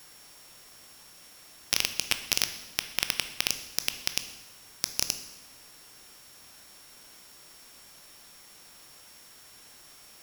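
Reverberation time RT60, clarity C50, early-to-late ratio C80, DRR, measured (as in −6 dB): 1.1 s, 10.5 dB, 12.5 dB, 8.0 dB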